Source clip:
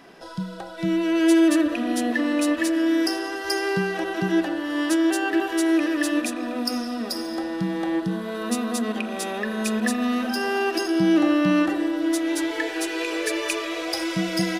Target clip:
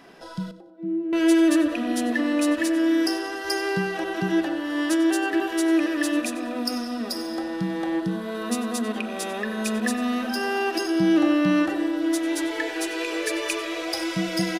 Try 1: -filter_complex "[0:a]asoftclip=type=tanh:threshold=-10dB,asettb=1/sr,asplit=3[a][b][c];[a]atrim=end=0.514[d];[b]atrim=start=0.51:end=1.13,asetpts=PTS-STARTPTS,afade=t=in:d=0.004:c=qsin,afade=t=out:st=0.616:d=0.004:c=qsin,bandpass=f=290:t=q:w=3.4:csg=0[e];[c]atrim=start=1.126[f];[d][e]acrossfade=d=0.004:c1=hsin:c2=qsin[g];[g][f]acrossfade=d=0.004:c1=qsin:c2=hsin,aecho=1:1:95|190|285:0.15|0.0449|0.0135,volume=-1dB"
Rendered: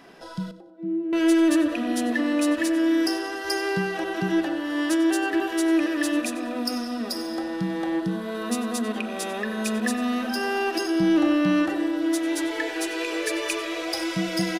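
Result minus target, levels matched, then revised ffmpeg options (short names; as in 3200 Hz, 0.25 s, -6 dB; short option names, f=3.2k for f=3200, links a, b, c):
soft clip: distortion +19 dB
-filter_complex "[0:a]asoftclip=type=tanh:threshold=0dB,asettb=1/sr,asplit=3[a][b][c];[a]atrim=end=0.514[d];[b]atrim=start=0.51:end=1.13,asetpts=PTS-STARTPTS,afade=t=in:d=0.004:c=qsin,afade=t=out:st=0.616:d=0.004:c=qsin,bandpass=f=290:t=q:w=3.4:csg=0[e];[c]atrim=start=1.126[f];[d][e]acrossfade=d=0.004:c1=hsin:c2=qsin[g];[g][f]acrossfade=d=0.004:c1=qsin:c2=hsin,aecho=1:1:95|190|285:0.15|0.0449|0.0135,volume=-1dB"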